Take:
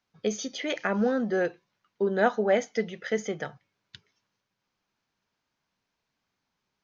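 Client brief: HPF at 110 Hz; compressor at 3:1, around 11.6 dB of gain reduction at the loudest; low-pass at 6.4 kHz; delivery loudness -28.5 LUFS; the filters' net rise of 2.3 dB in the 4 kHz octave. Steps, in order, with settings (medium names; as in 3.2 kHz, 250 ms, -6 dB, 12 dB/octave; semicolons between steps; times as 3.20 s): high-pass 110 Hz; low-pass 6.4 kHz; peaking EQ 4 kHz +3.5 dB; compression 3:1, threshold -34 dBFS; trim +8 dB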